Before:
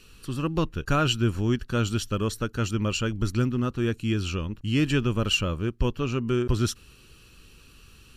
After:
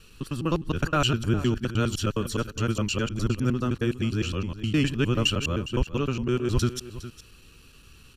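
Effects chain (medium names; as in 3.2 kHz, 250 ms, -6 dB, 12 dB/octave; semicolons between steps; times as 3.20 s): time reversed locally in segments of 103 ms; delay 410 ms -14.5 dB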